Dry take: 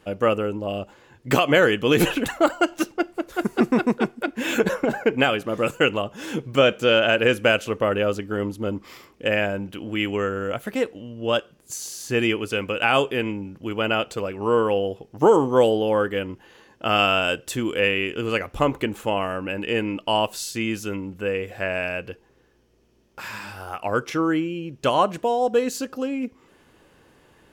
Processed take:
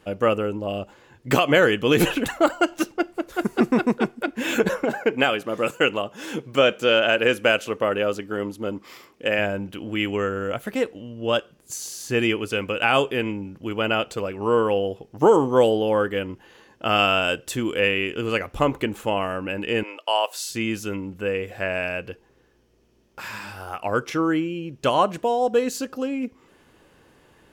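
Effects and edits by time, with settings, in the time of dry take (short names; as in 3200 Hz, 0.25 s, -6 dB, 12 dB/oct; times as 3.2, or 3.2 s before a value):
4.83–9.39 HPF 220 Hz 6 dB/oct
19.83–20.49 HPF 490 Hz 24 dB/oct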